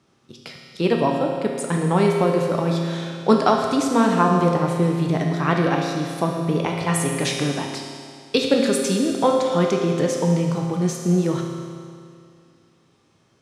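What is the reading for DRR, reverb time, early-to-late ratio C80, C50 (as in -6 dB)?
0.5 dB, 2.2 s, 3.5 dB, 2.0 dB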